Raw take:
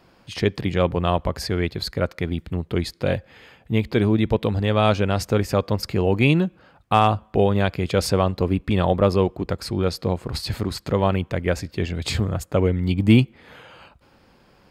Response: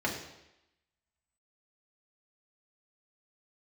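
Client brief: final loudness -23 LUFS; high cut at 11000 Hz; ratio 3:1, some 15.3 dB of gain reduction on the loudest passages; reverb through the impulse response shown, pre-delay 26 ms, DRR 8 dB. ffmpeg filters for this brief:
-filter_complex "[0:a]lowpass=11k,acompressor=threshold=-31dB:ratio=3,asplit=2[a][b];[1:a]atrim=start_sample=2205,adelay=26[c];[b][c]afir=irnorm=-1:irlink=0,volume=-16.5dB[d];[a][d]amix=inputs=2:normalize=0,volume=9dB"

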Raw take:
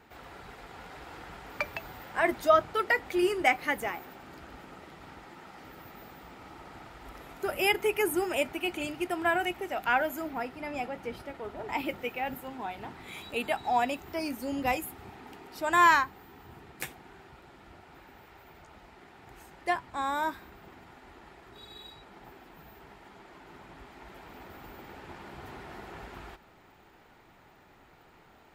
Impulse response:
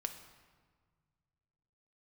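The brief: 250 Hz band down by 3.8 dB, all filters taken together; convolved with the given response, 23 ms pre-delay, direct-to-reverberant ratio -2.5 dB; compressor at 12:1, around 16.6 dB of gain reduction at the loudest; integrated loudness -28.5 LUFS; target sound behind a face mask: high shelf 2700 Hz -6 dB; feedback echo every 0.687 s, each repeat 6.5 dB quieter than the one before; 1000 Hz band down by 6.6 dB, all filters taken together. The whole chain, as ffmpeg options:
-filter_complex "[0:a]equalizer=f=250:t=o:g=-5,equalizer=f=1k:t=o:g=-7.5,acompressor=threshold=-37dB:ratio=12,aecho=1:1:687|1374|2061|2748|3435|4122:0.473|0.222|0.105|0.0491|0.0231|0.0109,asplit=2[a][b];[1:a]atrim=start_sample=2205,adelay=23[c];[b][c]afir=irnorm=-1:irlink=0,volume=3dB[d];[a][d]amix=inputs=2:normalize=0,highshelf=f=2.7k:g=-6,volume=12.5dB"

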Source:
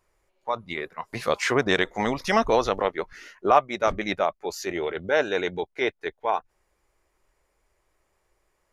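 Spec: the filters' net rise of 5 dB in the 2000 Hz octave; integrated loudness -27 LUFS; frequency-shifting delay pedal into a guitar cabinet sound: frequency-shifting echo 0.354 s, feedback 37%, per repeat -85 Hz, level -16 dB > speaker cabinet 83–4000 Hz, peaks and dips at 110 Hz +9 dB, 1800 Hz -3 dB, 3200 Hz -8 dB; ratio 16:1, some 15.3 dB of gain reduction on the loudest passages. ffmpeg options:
-filter_complex "[0:a]equalizer=f=2k:t=o:g=8.5,acompressor=threshold=-26dB:ratio=16,asplit=4[a][b][c][d];[b]adelay=354,afreqshift=-85,volume=-16dB[e];[c]adelay=708,afreqshift=-170,volume=-24.6dB[f];[d]adelay=1062,afreqshift=-255,volume=-33.3dB[g];[a][e][f][g]amix=inputs=4:normalize=0,highpass=83,equalizer=f=110:t=q:w=4:g=9,equalizer=f=1.8k:t=q:w=4:g=-3,equalizer=f=3.2k:t=q:w=4:g=-8,lowpass=f=4k:w=0.5412,lowpass=f=4k:w=1.3066,volume=6dB"

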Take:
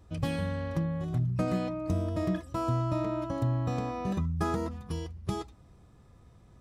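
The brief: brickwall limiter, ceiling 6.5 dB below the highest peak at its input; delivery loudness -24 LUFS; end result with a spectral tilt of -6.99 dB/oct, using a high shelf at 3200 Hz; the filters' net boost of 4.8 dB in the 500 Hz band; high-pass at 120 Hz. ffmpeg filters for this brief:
-af "highpass=120,equalizer=f=500:t=o:g=6.5,highshelf=f=3.2k:g=-6,volume=8.5dB,alimiter=limit=-14dB:level=0:latency=1"

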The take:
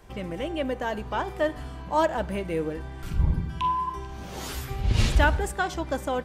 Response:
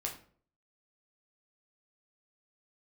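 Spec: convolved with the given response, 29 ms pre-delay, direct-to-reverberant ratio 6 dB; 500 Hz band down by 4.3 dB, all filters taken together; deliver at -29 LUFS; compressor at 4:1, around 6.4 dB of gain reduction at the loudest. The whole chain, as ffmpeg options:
-filter_complex "[0:a]equalizer=f=500:t=o:g=-5.5,acompressor=threshold=-24dB:ratio=4,asplit=2[a][b];[1:a]atrim=start_sample=2205,adelay=29[c];[b][c]afir=irnorm=-1:irlink=0,volume=-7dB[d];[a][d]amix=inputs=2:normalize=0,volume=2dB"

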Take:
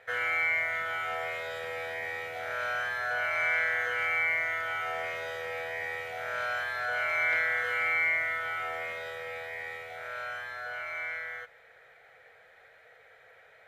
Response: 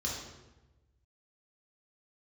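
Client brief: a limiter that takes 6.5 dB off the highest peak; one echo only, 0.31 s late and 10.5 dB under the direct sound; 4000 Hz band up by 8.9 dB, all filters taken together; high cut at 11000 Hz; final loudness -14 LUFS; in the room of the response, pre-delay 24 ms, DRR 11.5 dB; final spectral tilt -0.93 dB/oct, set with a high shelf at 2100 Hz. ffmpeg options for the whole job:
-filter_complex "[0:a]lowpass=11k,highshelf=f=2.1k:g=5.5,equalizer=f=4k:t=o:g=7,alimiter=limit=-19dB:level=0:latency=1,aecho=1:1:310:0.299,asplit=2[a][b];[1:a]atrim=start_sample=2205,adelay=24[c];[b][c]afir=irnorm=-1:irlink=0,volume=-15.5dB[d];[a][d]amix=inputs=2:normalize=0,volume=14.5dB"

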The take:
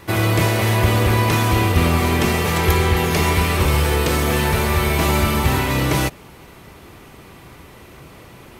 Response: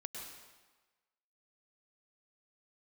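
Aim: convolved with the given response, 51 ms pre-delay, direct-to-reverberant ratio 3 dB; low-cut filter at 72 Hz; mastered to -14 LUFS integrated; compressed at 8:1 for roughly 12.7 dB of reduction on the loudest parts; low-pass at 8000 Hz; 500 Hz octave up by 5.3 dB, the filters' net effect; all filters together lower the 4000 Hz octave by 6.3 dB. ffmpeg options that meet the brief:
-filter_complex "[0:a]highpass=72,lowpass=8k,equalizer=f=500:t=o:g=7,equalizer=f=4k:t=o:g=-8.5,acompressor=threshold=-25dB:ratio=8,asplit=2[a][b];[1:a]atrim=start_sample=2205,adelay=51[c];[b][c]afir=irnorm=-1:irlink=0,volume=-1dB[d];[a][d]amix=inputs=2:normalize=0,volume=12.5dB"

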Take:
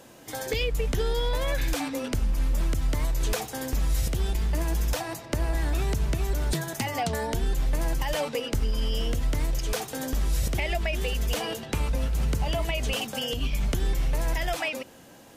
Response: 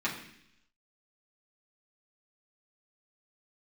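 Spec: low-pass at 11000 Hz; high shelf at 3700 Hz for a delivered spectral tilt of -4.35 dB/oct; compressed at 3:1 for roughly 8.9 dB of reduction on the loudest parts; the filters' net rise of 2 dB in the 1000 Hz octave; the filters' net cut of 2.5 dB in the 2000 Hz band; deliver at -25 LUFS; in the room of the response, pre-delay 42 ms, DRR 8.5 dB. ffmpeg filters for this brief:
-filter_complex "[0:a]lowpass=11k,equalizer=f=1k:t=o:g=3.5,equalizer=f=2k:t=o:g=-6.5,highshelf=f=3.7k:g=7.5,acompressor=threshold=-34dB:ratio=3,asplit=2[a][b];[1:a]atrim=start_sample=2205,adelay=42[c];[b][c]afir=irnorm=-1:irlink=0,volume=-16.5dB[d];[a][d]amix=inputs=2:normalize=0,volume=11dB"

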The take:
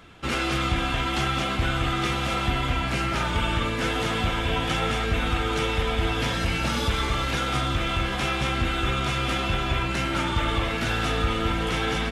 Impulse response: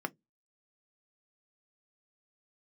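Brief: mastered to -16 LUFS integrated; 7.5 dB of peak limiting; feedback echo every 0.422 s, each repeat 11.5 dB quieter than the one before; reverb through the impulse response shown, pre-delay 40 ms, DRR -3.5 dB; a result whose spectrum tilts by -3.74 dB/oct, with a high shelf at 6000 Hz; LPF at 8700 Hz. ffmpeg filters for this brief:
-filter_complex "[0:a]lowpass=8.7k,highshelf=f=6k:g=-4.5,alimiter=limit=-20dB:level=0:latency=1,aecho=1:1:422|844|1266:0.266|0.0718|0.0194,asplit=2[a][b];[1:a]atrim=start_sample=2205,adelay=40[c];[b][c]afir=irnorm=-1:irlink=0,volume=0dB[d];[a][d]amix=inputs=2:normalize=0,volume=7.5dB"

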